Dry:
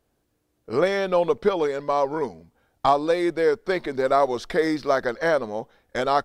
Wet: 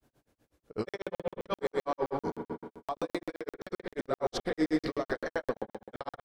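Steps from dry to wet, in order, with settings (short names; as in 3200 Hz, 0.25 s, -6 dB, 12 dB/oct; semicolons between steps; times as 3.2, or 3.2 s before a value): negative-ratio compressor -25 dBFS, ratio -1; limiter -20.5 dBFS, peak gain reduction 8.5 dB; spring tank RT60 1.7 s, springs 38 ms, chirp 75 ms, DRR 3.5 dB; grains 0.115 s, grains 8.1/s, pitch spread up and down by 0 st; crackling interface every 0.13 s, samples 2048, zero, from 0.89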